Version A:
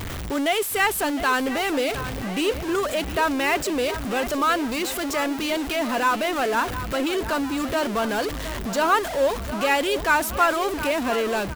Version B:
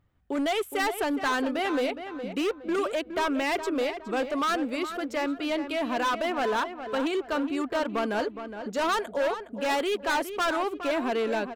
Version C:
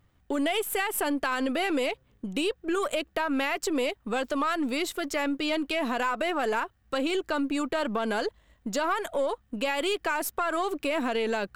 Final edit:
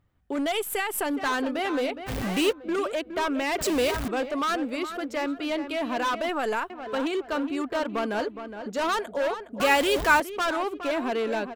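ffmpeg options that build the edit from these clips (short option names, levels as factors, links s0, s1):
-filter_complex "[2:a]asplit=2[s0][s1];[0:a]asplit=3[s2][s3][s4];[1:a]asplit=6[s5][s6][s7][s8][s9][s10];[s5]atrim=end=0.522[s11];[s0]atrim=start=0.518:end=1.062[s12];[s6]atrim=start=1.058:end=2.1[s13];[s2]atrim=start=2.06:end=2.53[s14];[s7]atrim=start=2.49:end=3.612[s15];[s3]atrim=start=3.608:end=4.082[s16];[s8]atrim=start=4.078:end=6.292[s17];[s1]atrim=start=6.288:end=6.702[s18];[s9]atrim=start=6.698:end=9.602[s19];[s4]atrim=start=9.598:end=10.202[s20];[s10]atrim=start=10.198[s21];[s11][s12]acrossfade=d=0.004:c1=hsin:c2=hsin[s22];[s22][s13]acrossfade=d=0.004:c1=hsin:c2=hsin[s23];[s23][s14]acrossfade=d=0.04:c1=tri:c2=tri[s24];[s24][s15]acrossfade=d=0.04:c1=tri:c2=tri[s25];[s25][s16]acrossfade=d=0.004:c1=hsin:c2=hsin[s26];[s26][s17]acrossfade=d=0.004:c1=hsin:c2=hsin[s27];[s27][s18]acrossfade=d=0.004:c1=hsin:c2=hsin[s28];[s28][s19]acrossfade=d=0.004:c1=hsin:c2=hsin[s29];[s29][s20]acrossfade=d=0.004:c1=hsin:c2=hsin[s30];[s30][s21]acrossfade=d=0.004:c1=hsin:c2=hsin"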